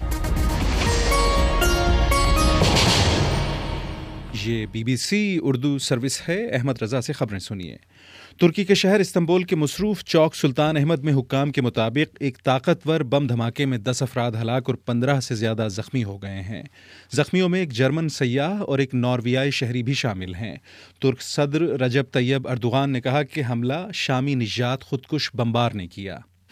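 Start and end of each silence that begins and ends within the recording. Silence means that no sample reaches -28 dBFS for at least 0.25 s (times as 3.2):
7.76–8.41
16.66–17.12
20.56–21.02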